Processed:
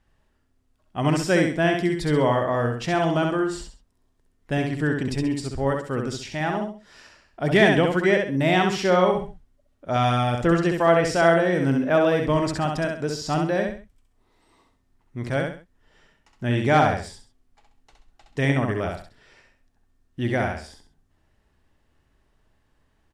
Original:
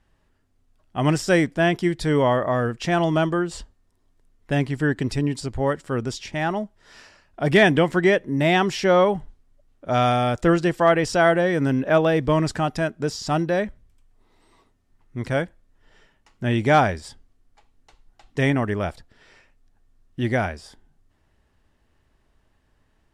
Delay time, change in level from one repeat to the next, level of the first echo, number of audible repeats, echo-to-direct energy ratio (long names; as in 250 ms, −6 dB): 66 ms, −9.5 dB, −4.0 dB, 3, −3.5 dB